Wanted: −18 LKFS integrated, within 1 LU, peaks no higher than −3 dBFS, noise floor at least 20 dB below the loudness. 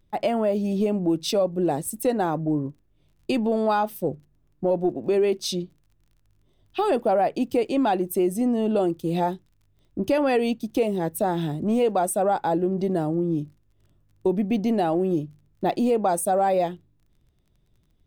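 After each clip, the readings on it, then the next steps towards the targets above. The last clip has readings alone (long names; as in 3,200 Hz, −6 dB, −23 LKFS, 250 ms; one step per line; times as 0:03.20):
crackle rate 19 per second; integrated loudness −24.0 LKFS; sample peak −12.0 dBFS; target loudness −18.0 LKFS
→ click removal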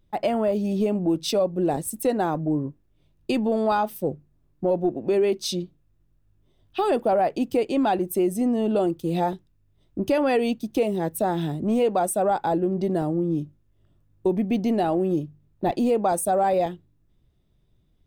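crackle rate 0.61 per second; integrated loudness −24.5 LKFS; sample peak −12.0 dBFS; target loudness −18.0 LKFS
→ level +6.5 dB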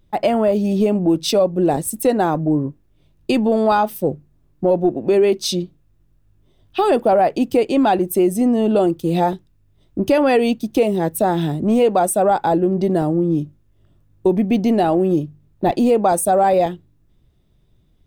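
integrated loudness −18.0 LKFS; sample peak −5.5 dBFS; background noise floor −58 dBFS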